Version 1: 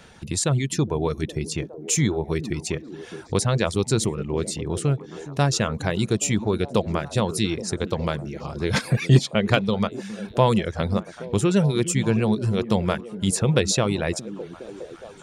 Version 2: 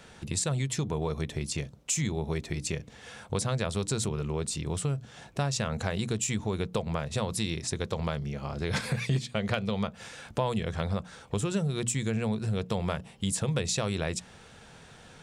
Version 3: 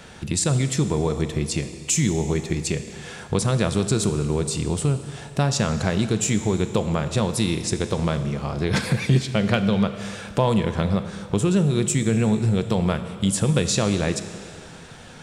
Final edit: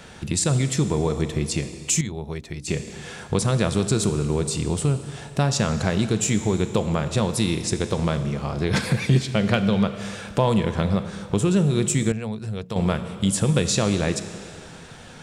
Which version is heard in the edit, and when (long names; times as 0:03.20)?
3
0:02.01–0:02.68: punch in from 2
0:12.12–0:12.76: punch in from 2
not used: 1